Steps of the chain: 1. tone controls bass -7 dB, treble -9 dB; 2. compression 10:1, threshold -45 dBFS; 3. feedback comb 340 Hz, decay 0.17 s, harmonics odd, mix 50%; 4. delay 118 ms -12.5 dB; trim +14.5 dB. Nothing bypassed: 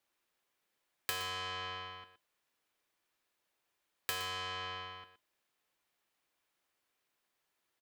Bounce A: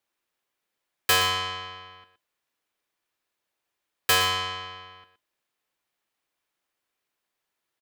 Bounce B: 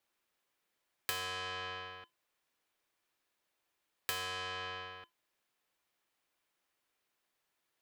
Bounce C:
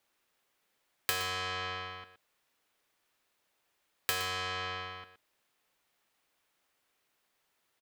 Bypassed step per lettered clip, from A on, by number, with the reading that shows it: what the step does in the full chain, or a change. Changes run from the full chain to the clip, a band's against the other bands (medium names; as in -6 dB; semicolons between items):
2, mean gain reduction 7.0 dB; 4, momentary loudness spread change -4 LU; 3, 4 kHz band -2.5 dB